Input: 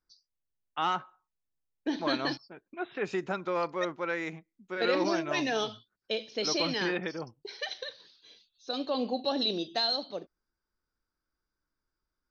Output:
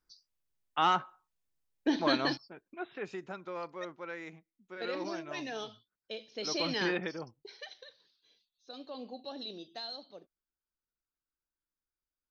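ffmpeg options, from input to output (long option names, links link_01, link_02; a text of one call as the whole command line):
ffmpeg -i in.wav -af "volume=11.5dB,afade=type=out:start_time=1.92:duration=1.25:silence=0.251189,afade=type=in:start_time=6.29:duration=0.58:silence=0.354813,afade=type=out:start_time=6.87:duration=0.87:silence=0.237137" out.wav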